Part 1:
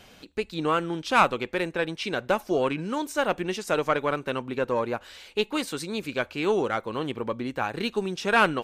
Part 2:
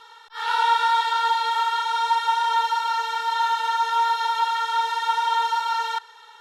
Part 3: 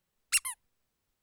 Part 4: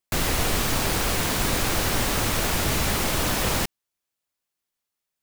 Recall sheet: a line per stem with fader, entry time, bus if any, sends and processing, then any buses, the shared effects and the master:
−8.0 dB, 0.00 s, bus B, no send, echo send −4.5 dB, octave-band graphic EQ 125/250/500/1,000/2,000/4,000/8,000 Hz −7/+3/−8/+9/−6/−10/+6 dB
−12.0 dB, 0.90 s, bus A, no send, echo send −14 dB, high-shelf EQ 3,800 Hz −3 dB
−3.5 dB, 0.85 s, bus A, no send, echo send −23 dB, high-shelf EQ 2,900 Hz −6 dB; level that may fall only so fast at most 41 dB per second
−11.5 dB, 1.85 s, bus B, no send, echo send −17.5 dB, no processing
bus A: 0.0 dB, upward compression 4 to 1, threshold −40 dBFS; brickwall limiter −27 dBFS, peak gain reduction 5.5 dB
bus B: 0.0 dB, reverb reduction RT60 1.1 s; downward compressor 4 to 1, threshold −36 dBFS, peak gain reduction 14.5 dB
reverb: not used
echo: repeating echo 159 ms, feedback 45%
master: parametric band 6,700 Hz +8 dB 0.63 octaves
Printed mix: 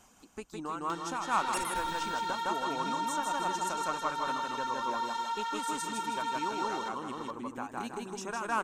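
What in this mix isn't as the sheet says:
stem 3: entry 0.85 s → 1.20 s
stem 4: muted

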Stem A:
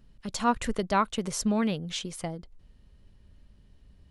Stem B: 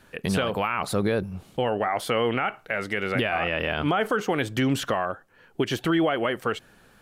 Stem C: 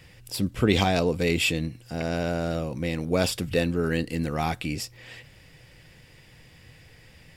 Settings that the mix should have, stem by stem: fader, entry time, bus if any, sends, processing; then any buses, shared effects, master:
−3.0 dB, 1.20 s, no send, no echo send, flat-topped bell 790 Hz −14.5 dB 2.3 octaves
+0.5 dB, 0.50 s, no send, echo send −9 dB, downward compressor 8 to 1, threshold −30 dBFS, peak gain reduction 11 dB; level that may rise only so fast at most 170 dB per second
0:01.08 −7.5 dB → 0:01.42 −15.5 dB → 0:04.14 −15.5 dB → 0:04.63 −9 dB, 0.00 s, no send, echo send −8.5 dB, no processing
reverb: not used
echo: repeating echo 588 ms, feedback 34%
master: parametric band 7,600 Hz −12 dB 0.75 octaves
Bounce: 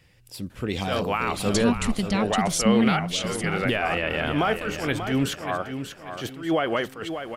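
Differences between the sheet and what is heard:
stem A −3.0 dB → +6.5 dB
stem B: missing downward compressor 8 to 1, threshold −30 dBFS, peak gain reduction 11 dB
master: missing parametric band 7,600 Hz −12 dB 0.75 octaves

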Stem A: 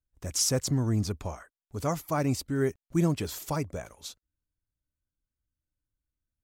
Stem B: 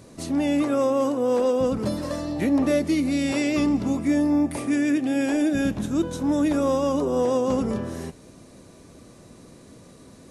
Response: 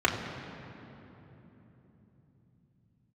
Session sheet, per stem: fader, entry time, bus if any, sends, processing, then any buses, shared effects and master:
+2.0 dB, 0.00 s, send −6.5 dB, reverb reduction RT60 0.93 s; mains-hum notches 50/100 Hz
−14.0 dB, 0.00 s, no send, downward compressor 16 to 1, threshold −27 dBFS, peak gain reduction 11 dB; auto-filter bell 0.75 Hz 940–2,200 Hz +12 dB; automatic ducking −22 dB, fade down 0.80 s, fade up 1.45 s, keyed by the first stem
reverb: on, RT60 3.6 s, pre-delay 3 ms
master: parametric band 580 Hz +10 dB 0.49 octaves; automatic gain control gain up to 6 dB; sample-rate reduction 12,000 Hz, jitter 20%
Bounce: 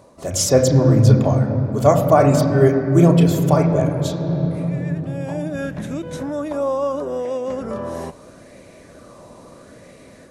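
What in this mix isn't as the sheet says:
stem B −14.0 dB → −4.5 dB
master: missing sample-rate reduction 12,000 Hz, jitter 20%

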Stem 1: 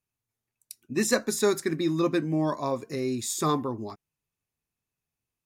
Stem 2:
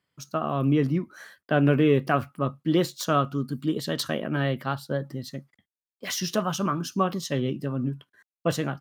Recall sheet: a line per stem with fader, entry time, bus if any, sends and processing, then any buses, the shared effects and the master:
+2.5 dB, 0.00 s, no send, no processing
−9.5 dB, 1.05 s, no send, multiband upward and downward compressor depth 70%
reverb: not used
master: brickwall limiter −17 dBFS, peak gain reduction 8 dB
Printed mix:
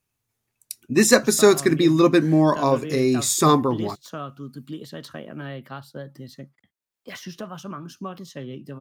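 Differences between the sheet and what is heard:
stem 1 +2.5 dB → +9.0 dB
master: missing brickwall limiter −17 dBFS, peak gain reduction 8 dB

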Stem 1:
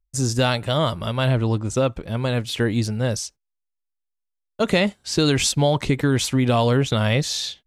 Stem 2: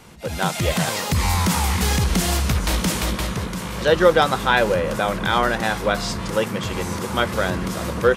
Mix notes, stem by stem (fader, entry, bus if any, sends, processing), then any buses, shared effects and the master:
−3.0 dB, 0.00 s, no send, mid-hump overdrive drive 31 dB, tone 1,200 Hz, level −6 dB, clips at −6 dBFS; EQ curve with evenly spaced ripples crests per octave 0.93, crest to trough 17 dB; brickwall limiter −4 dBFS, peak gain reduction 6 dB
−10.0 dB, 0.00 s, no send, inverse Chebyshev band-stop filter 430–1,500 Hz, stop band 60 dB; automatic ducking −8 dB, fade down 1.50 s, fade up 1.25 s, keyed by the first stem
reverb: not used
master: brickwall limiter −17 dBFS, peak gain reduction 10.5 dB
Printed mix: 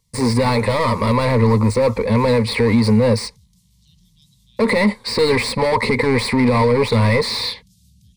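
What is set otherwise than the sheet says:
stem 2 −10.0 dB → −17.0 dB
master: missing brickwall limiter −17 dBFS, peak gain reduction 10.5 dB

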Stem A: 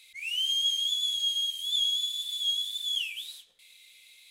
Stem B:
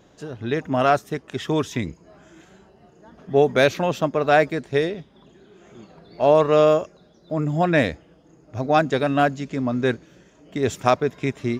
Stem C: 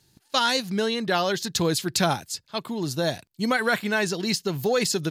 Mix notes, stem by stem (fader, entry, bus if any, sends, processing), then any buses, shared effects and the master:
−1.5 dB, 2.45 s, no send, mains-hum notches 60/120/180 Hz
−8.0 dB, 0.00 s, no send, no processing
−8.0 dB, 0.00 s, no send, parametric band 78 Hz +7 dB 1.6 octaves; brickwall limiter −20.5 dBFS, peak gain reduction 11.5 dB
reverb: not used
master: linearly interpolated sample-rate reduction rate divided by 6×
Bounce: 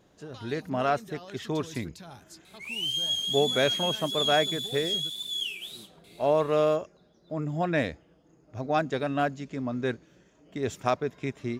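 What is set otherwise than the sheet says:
stem C −8.0 dB → −17.0 dB
master: missing linearly interpolated sample-rate reduction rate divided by 6×

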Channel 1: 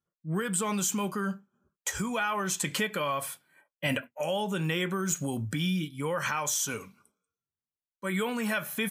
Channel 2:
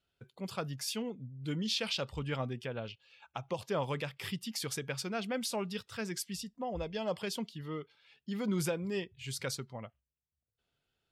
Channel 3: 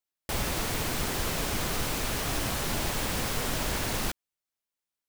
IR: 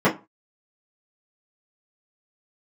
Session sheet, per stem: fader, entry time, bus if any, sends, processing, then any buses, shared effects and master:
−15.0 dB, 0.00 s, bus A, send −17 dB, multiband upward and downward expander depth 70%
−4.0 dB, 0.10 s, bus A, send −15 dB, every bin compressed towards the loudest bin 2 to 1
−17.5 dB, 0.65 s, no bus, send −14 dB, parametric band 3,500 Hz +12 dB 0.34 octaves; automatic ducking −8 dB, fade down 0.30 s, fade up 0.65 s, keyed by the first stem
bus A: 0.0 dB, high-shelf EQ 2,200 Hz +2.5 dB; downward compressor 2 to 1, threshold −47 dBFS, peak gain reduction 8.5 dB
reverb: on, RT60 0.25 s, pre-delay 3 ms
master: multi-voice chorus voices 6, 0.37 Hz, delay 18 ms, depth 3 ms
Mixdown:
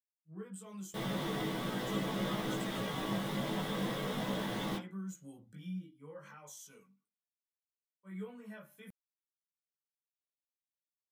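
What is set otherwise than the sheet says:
stem 1 −15.0 dB → −25.0 dB
stem 2: muted
stem 3 −17.5 dB → −10.0 dB

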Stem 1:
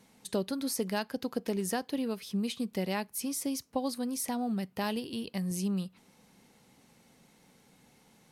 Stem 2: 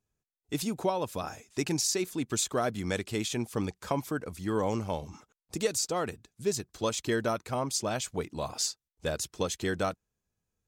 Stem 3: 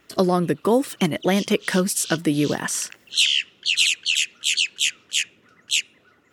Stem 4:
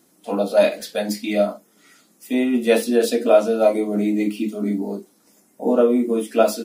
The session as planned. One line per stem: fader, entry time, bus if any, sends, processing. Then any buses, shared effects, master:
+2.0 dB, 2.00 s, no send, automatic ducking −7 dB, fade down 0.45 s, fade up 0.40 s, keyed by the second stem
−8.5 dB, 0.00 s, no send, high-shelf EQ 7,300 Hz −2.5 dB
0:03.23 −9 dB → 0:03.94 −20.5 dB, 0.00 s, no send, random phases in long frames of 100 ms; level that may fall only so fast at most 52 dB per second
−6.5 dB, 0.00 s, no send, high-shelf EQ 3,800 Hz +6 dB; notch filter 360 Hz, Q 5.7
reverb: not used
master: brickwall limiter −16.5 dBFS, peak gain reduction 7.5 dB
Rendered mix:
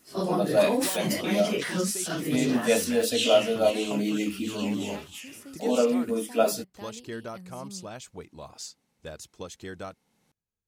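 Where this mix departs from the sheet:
stem 1 +2.0 dB → −5.5 dB
master: missing brickwall limiter −16.5 dBFS, peak gain reduction 7.5 dB

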